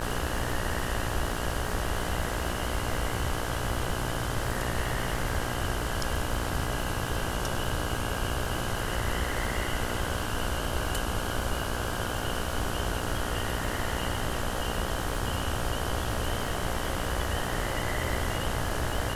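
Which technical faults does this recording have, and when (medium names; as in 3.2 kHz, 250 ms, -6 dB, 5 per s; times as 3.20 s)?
buzz 60 Hz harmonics 28 -35 dBFS
crackle 190 per s -37 dBFS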